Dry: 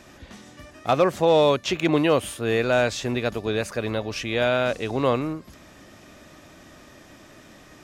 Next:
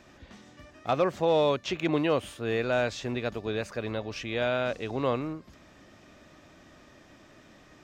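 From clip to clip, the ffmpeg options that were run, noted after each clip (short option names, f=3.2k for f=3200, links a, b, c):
-af "equalizer=f=11k:t=o:w=0.82:g=-12,volume=-6dB"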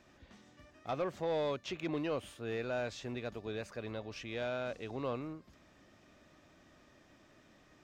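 -af "asoftclip=type=tanh:threshold=-18dB,volume=-8.5dB"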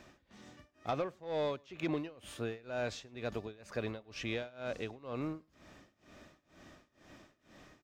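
-filter_complex "[0:a]acompressor=threshold=-37dB:ratio=6,tremolo=f=2.1:d=0.94,asplit=2[a][b];[b]adelay=105,volume=-28dB,highshelf=f=4k:g=-2.36[c];[a][c]amix=inputs=2:normalize=0,volume=7dB"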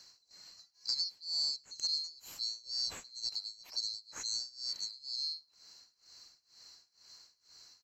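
-af "afftfilt=real='real(if(lt(b,736),b+184*(1-2*mod(floor(b/184),2)),b),0)':imag='imag(if(lt(b,736),b+184*(1-2*mod(floor(b/184),2)),b),0)':win_size=2048:overlap=0.75"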